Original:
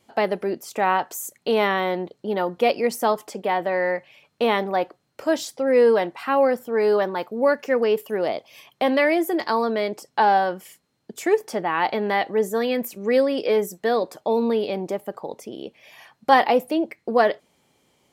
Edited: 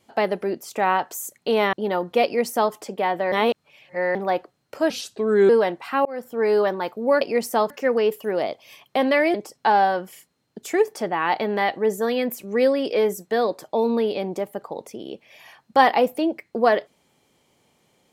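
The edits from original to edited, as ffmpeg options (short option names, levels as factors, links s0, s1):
-filter_complex "[0:a]asplit=10[s0][s1][s2][s3][s4][s5][s6][s7][s8][s9];[s0]atrim=end=1.732[s10];[s1]atrim=start=2.188:end=3.782[s11];[s2]atrim=start=3.778:end=4.612,asetpts=PTS-STARTPTS,areverse[s12];[s3]atrim=start=4.608:end=5.364[s13];[s4]atrim=start=5.36:end=5.84,asetpts=PTS-STARTPTS,asetrate=35721,aresample=44100,atrim=end_sample=26133,asetpts=PTS-STARTPTS[s14];[s5]atrim=start=5.836:end=6.4,asetpts=PTS-STARTPTS,afade=t=out:st=0.56:d=0.004:c=hsin[s15];[s6]atrim=start=6.4:end=7.562,asetpts=PTS-STARTPTS,afade=t=in:d=0.32[s16];[s7]atrim=start=2.698:end=3.192[s17];[s8]atrim=start=7.558:end=9.202[s18];[s9]atrim=start=9.868[s19];[s10][s11]acrossfade=d=0.004:c1=hsin:c2=hsin[s20];[s20][s12]acrossfade=d=0.004:c1=hsin:c2=hsin[s21];[s21][s13]acrossfade=d=0.004:c1=hsin:c2=hsin[s22];[s22][s14]acrossfade=d=0.004:c1=hsin:c2=hsin[s23];[s15][s16]concat=n=2:v=0:a=1[s24];[s23][s24]acrossfade=d=0.004:c1=hsin:c2=hsin[s25];[s25][s17]acrossfade=d=0.004:c1=hsin:c2=hsin[s26];[s26][s18]acrossfade=d=0.004:c1=hsin:c2=hsin[s27];[s27][s19]acrossfade=d=0.004:c1=hsin:c2=hsin"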